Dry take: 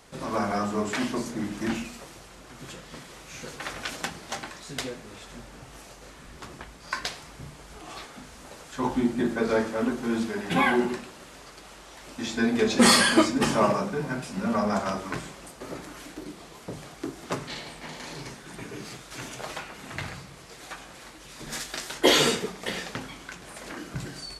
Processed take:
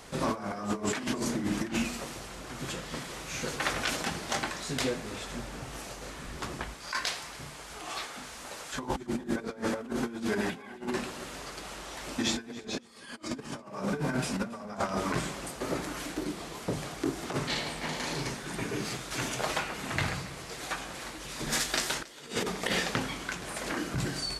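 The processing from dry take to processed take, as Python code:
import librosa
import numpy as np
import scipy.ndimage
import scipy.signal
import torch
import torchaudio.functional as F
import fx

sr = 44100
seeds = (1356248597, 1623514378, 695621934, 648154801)

y = fx.low_shelf(x, sr, hz=430.0, db=-10.5, at=(6.74, 8.74))
y = fx.over_compress(y, sr, threshold_db=-32.0, ratio=-0.5)
y = fx.echo_feedback(y, sr, ms=278, feedback_pct=21, wet_db=-21)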